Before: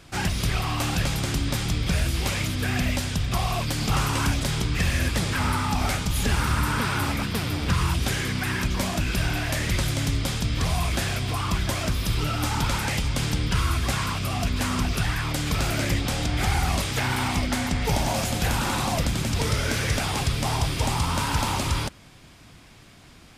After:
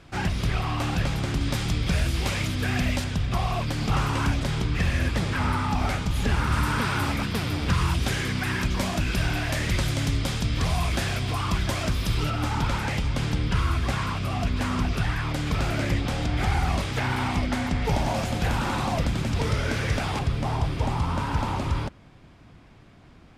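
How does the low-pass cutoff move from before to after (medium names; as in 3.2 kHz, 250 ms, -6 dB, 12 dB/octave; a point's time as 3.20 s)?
low-pass 6 dB/octave
2.5 kHz
from 1.41 s 5.7 kHz
from 3.04 s 2.6 kHz
from 6.52 s 6.1 kHz
from 12.30 s 2.5 kHz
from 20.19 s 1.2 kHz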